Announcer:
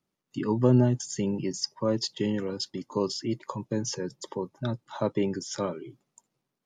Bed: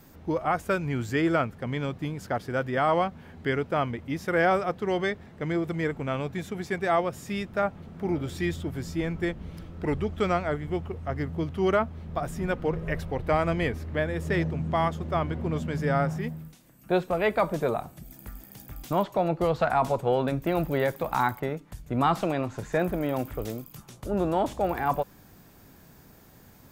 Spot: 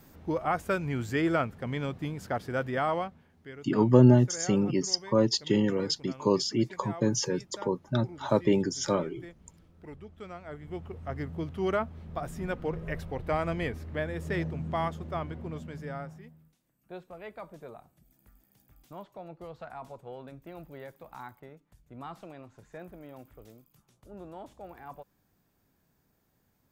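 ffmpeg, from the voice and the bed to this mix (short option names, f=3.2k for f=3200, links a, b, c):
-filter_complex "[0:a]adelay=3300,volume=3dB[a];[1:a]volume=10.5dB,afade=t=out:st=2.7:d=0.6:silence=0.16788,afade=t=in:st=10.38:d=0.67:silence=0.223872,afade=t=out:st=14.79:d=1.48:silence=0.199526[b];[a][b]amix=inputs=2:normalize=0"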